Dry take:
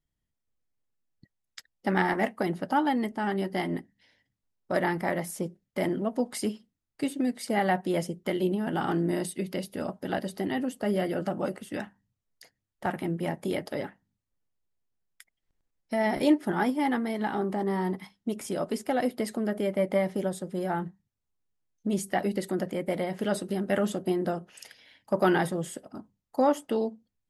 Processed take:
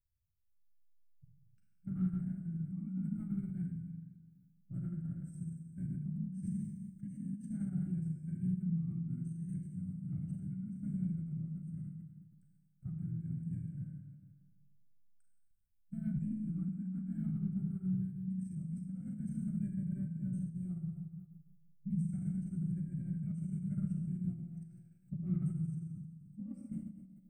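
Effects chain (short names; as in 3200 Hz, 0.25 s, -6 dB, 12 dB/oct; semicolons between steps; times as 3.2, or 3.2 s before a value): inverse Chebyshev band-stop 410–9700 Hz, stop band 40 dB; Schroeder reverb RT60 1.6 s, combs from 33 ms, DRR -1 dB; formant shift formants -5 st; gain -2.5 dB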